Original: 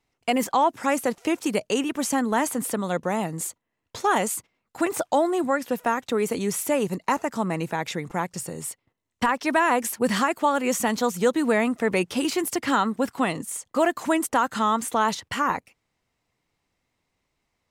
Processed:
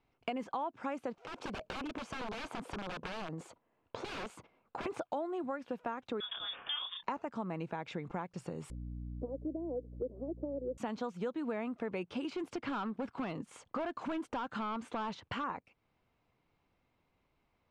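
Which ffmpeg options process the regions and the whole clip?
ffmpeg -i in.wav -filter_complex "[0:a]asettb=1/sr,asplit=3[link_01][link_02][link_03];[link_01]atrim=end=1.194[link_04];[link_02]atrim=start=1.19:end=4.86,asetpts=PTS-STARTPTS,afade=type=in:duration=0.004:curve=qsin,afade=type=out:start_time=3.666:duration=0.004:curve=qsin,equalizer=frequency=630:width_type=o:width=2.5:gain=7.5,aeval=exprs='(mod(7.5*val(0)+1,2)-1)/7.5':channel_layout=same,acompressor=threshold=-34dB:ratio=16:attack=3.2:release=140:knee=1:detection=peak[link_05];[link_03]atrim=start=4.856[link_06];[link_04][link_05]acrossfade=duration=0.004:curve1=hsin:curve2=qsin[link_07];[link_07][link_06]acrossfade=duration=0.004:curve1=qsin:curve2=hsin,asettb=1/sr,asplit=3[link_08][link_09][link_10];[link_08]atrim=end=6.204[link_11];[link_09]atrim=start=6.2:end=7.03,asetpts=PTS-STARTPTS,afade=type=in:duration=0.004:curve=qsin,afade=type=out:start_time=0.826:duration=0.004:curve=qsin,highpass=320,lowpass=frequency=3200:width_type=q:width=0.5098,lowpass=frequency=3200:width_type=q:width=0.6013,lowpass=frequency=3200:width_type=q:width=0.9,lowpass=frequency=3200:width_type=q:width=2.563,afreqshift=-3800,asplit=2[link_12][link_13];[link_13]adelay=29,volume=-3.5dB[link_14];[link_12][link_14]amix=inputs=2:normalize=0,atrim=end_sample=36603[link_15];[link_10]atrim=start=7.026[link_16];[link_11][link_15]acrossfade=duration=0.004:curve1=hsin:curve2=qsin[link_17];[link_17][link_16]acrossfade=duration=0.004:curve1=qsin:curve2=hsin,asettb=1/sr,asplit=3[link_18][link_19][link_20];[link_18]atrim=end=8.704[link_21];[link_19]atrim=start=8.7:end=10.78,asetpts=PTS-STARTPTS,afade=type=in:duration=0.004:curve=qsin,afade=type=out:start_time=2.076:duration=0.004:curve=qsin,asuperpass=centerf=400:order=8:qfactor=1.4,aeval=exprs='val(0)+0.00891*(sin(2*PI*60*n/s)+sin(2*PI*2*60*n/s)/2+sin(2*PI*3*60*n/s)/3+sin(2*PI*4*60*n/s)/4+sin(2*PI*5*60*n/s)/5)':channel_layout=same[link_22];[link_20]atrim=start=10.776[link_23];[link_21][link_22]acrossfade=duration=0.004:curve1=hsin:curve2=qsin[link_24];[link_24][link_23]acrossfade=duration=0.004:curve1=qsin:curve2=hsin,asettb=1/sr,asplit=3[link_25][link_26][link_27];[link_25]atrim=end=12.344[link_28];[link_26]atrim=start=12.34:end=15.44,asetpts=PTS-STARTPTS,afade=type=in:duration=0.004:curve=qsin,afade=type=out:start_time=3.096:duration=0.004:curve=qsin,highshelf=frequency=10000:gain=-6.5,asoftclip=type=hard:threshold=-22dB[link_29];[link_27]atrim=start=15.436[link_30];[link_28][link_29]acrossfade=duration=0.004:curve1=hsin:curve2=qsin[link_31];[link_31][link_30]acrossfade=duration=0.004:curve1=qsin:curve2=hsin,lowpass=2700,equalizer=frequency=1900:width=7.6:gain=-9,acompressor=threshold=-39dB:ratio=4,volume=1dB" out.wav

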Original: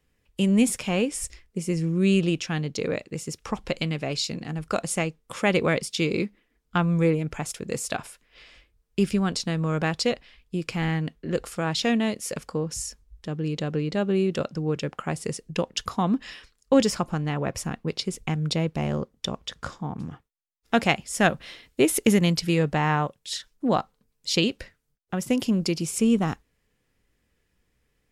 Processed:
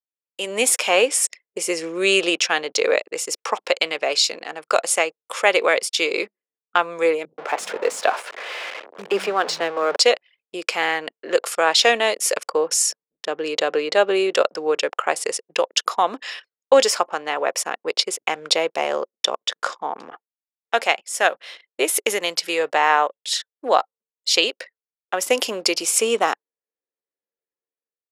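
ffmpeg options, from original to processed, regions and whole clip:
ffmpeg -i in.wav -filter_complex "[0:a]asettb=1/sr,asplit=3[link_01][link_02][link_03];[link_01]atrim=end=7.254[link_04];[link_02]atrim=start=7.25:end=9.96,asetpts=PTS-STARTPTS,afade=type=in:duration=0.004:curve=qsin,afade=type=out:start_time=2.706:duration=0.004:curve=qsin,aeval=exprs='val(0)+0.5*0.0266*sgn(val(0))':channel_layout=same,lowpass=frequency=1300:poles=1,acrossover=split=200[link_05][link_06];[link_06]adelay=130[link_07];[link_05][link_07]amix=inputs=2:normalize=0,atrim=end_sample=119511[link_08];[link_03]atrim=start=9.956[link_09];[link_04][link_08]acrossfade=duration=0.004:curve1=hsin:curve2=qsin[link_10];[link_10][link_09]acrossfade=duration=0.004:curve1=qsin:curve2=hsin,anlmdn=0.0398,highpass=frequency=470:width=0.5412,highpass=frequency=470:width=1.3066,dynaudnorm=framelen=200:gausssize=5:maxgain=15dB,volume=-1dB" out.wav

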